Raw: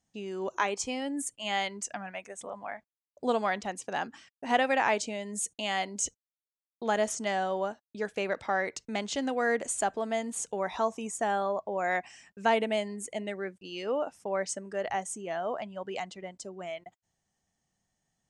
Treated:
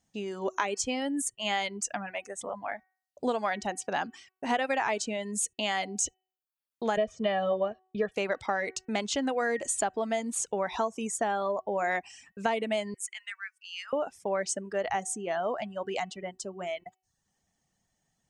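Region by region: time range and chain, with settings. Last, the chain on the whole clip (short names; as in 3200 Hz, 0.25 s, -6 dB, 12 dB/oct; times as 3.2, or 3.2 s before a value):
6.97–8.12 synth low-pass 3000 Hz, resonance Q 2.1 + tilt shelf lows +6.5 dB, about 890 Hz + comb 1.7 ms, depth 79%
12.94–13.93 steep high-pass 1300 Hz + bell 3900 Hz -8 dB 0.27 oct
whole clip: de-hum 375.1 Hz, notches 8; reverb removal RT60 0.51 s; compressor 5:1, threshold -29 dBFS; gain +4 dB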